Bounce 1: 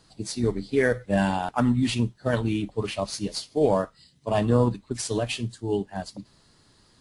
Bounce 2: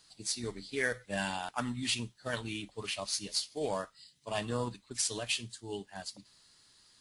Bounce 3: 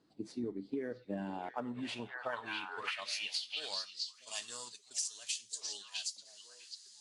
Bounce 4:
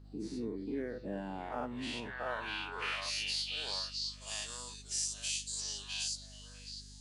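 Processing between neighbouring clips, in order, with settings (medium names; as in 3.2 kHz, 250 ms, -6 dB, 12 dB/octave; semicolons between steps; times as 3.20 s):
tilt shelf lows -8.5 dB, about 1.2 kHz; trim -7.5 dB
repeats whose band climbs or falls 651 ms, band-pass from 3.2 kHz, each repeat -1.4 oct, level -6 dB; band-pass sweep 300 Hz -> 6.5 kHz, 1.24–4.09 s; compression 10:1, threshold -46 dBFS, peak gain reduction 15 dB; trim +11.5 dB
every event in the spectrogram widened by 120 ms; hum 50 Hz, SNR 14 dB; trim -4 dB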